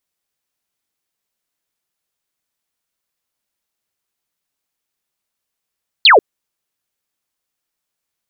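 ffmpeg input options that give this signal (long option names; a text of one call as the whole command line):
ffmpeg -f lavfi -i "aevalsrc='0.631*clip(t/0.002,0,1)*clip((0.14-t)/0.002,0,1)*sin(2*PI*4600*0.14/log(360/4600)*(exp(log(360/4600)*t/0.14)-1))':duration=0.14:sample_rate=44100" out.wav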